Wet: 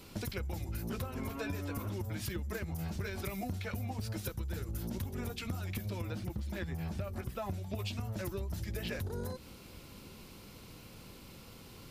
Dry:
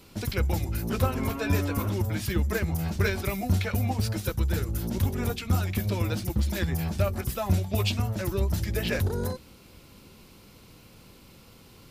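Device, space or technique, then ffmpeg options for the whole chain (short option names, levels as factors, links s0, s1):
serial compression, peaks first: -filter_complex "[0:a]acompressor=threshold=0.0282:ratio=6,acompressor=threshold=0.0141:ratio=2,asettb=1/sr,asplit=3[s0][s1][s2];[s0]atrim=end=6.014[s3];[s1]atrim=start=6.01:end=7.79,asetpts=PTS-STARTPTS,afade=t=in:d=0.004:c=qsin,afade=t=out:st=1.776:d=0.004:c=qsin,acrossover=split=3000[s4][s5];[s5]acompressor=threshold=0.00178:ratio=4:attack=1:release=60[s6];[s4][s6]amix=inputs=2:normalize=0[s7];[s2]atrim=start=7.786[s8];[s3][s7]acrossfade=d=0.004:c1=hsin:c2=qsin[s9];[s9][s8]acrossfade=d=0.004:c1=qsin:c2=hsin"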